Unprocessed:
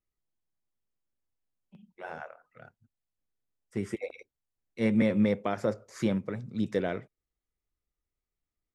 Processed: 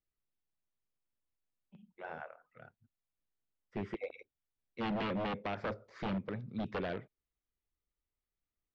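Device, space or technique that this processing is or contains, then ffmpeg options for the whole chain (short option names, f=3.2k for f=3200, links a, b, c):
synthesiser wavefolder: -af "aeval=exprs='0.0501*(abs(mod(val(0)/0.0501+3,4)-2)-1)':c=same,lowpass=f=4k:w=0.5412,lowpass=f=4k:w=1.3066,volume=-4dB"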